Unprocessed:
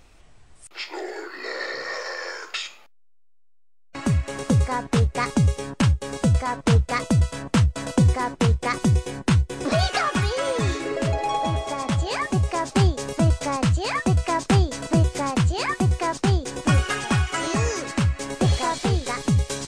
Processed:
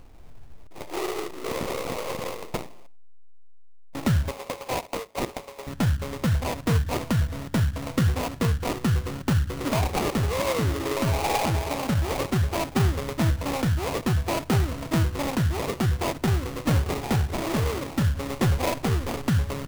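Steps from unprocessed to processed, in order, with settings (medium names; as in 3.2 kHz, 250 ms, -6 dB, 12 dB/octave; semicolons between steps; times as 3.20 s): local Wiener filter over 25 samples; on a send at -15.5 dB: reverberation, pre-delay 4 ms; on the sum: gain riding within 5 dB 2 s; 4.31–5.67 s: high-pass 520 Hz 24 dB/octave; sample-rate reducer 1.6 kHz, jitter 20%; in parallel at 0 dB: peak limiter -21.5 dBFS, peak gain reduction 11.5 dB; on the sum: trim -6 dB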